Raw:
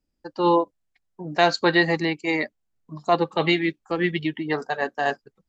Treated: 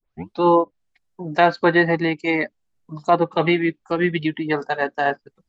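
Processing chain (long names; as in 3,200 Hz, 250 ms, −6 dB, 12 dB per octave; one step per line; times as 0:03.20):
turntable start at the beginning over 0.42 s
treble cut that deepens with the level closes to 2,200 Hz, closed at −18 dBFS
level +3.5 dB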